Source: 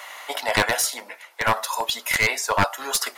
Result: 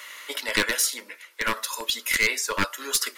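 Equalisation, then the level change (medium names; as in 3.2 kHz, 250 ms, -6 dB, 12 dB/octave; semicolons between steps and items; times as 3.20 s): static phaser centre 310 Hz, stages 4; 0.0 dB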